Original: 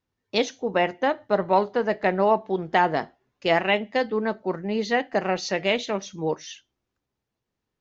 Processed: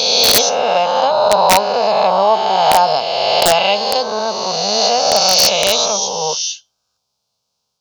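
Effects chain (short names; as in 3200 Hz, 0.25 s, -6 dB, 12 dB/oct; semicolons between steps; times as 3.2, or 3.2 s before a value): spectral swells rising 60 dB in 2.65 s; HPF 310 Hz 6 dB/oct; bell 5000 Hz +14 dB 1.1 oct; fixed phaser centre 780 Hz, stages 4; wrapped overs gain 9 dB; gain +7.5 dB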